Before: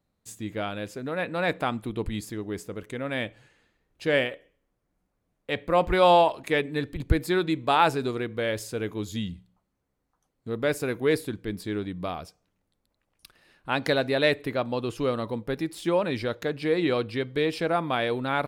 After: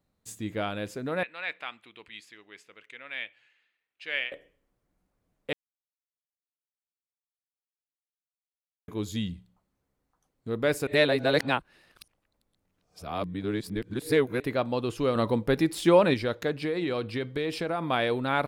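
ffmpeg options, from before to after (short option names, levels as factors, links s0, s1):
-filter_complex "[0:a]asettb=1/sr,asplit=3[s0][s1][s2];[s0]atrim=end=1.234[s3];[s1]atrim=start=1.23:end=4.32,asetpts=PTS-STARTPTS,afade=t=in:d=0.004:c=qsin,afade=t=out:st=3.086:d=0.004:c=qsin,bandpass=f=2500:t=q:w=1.9[s4];[s2]atrim=start=4.316[s5];[s3][s4]acrossfade=d=0.004:c1=hsin:c2=qsin[s6];[s6][s5]acrossfade=d=0.004:c1=qsin:c2=hsin,asettb=1/sr,asplit=3[s7][s8][s9];[s7]atrim=end=15.154[s10];[s8]atrim=start=15.15:end=16.14,asetpts=PTS-STARTPTS,afade=t=in:d=0.004:c=qsin,afade=t=out:st=0.986:d=0.004:c=qsin,acontrast=32[s11];[s9]atrim=start=16.136[s12];[s10][s11]acrossfade=d=0.004:c1=hsin:c2=qsin[s13];[s13][s12]acrossfade=d=0.004:c1=qsin:c2=hsin,asettb=1/sr,asplit=3[s14][s15][s16];[s14]atrim=end=16.644[s17];[s15]atrim=start=16.64:end=17.83,asetpts=PTS-STARTPTS,afade=t=in:d=0.004:c=qsin,afade=t=out:st=1.186:d=0.004:c=qsin,acompressor=threshold=0.0562:ratio=6:attack=3.2:release=140:knee=1:detection=peak[s18];[s16]atrim=start=17.826[s19];[s17][s18]acrossfade=d=0.004:c1=hsin:c2=qsin[s20];[s20][s19]acrossfade=d=0.004:c1=qsin:c2=hsin,asplit=5[s21][s22][s23][s24][s25];[s21]atrim=end=5.53,asetpts=PTS-STARTPTS,afade=t=out:st=5.526:d=0.004:c=hsin[s26];[s22]atrim=start=5.53:end=8.88,asetpts=PTS-STARTPTS,volume=0[s27];[s23]atrim=start=8.88:end=10.872,asetpts=PTS-STARTPTS,afade=t=in:d=0.004:c=hsin[s28];[s24]atrim=start=10.868:end=14.402,asetpts=PTS-STARTPTS,areverse[s29];[s25]atrim=start=14.398[s30];[s26][s27][s28]concat=n=3:v=0:a=1[s31];[s31][s29]acrossfade=d=0.004:c1=hsin:c2=hsin[s32];[s32][s30]acrossfade=d=0.004:c1=hsin:c2=hsin"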